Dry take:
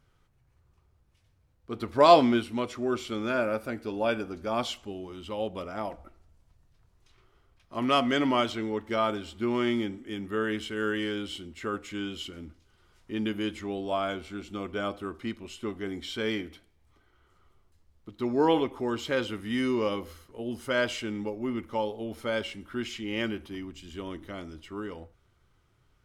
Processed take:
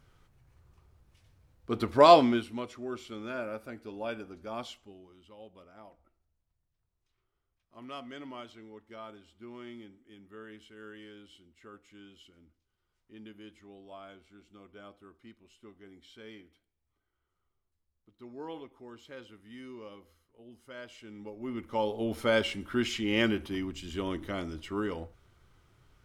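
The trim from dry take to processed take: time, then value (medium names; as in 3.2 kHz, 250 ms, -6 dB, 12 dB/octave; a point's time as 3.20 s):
1.77 s +4 dB
2.79 s -9 dB
4.56 s -9 dB
5.33 s -18.5 dB
20.89 s -18.5 dB
21.48 s -6 dB
22.06 s +4 dB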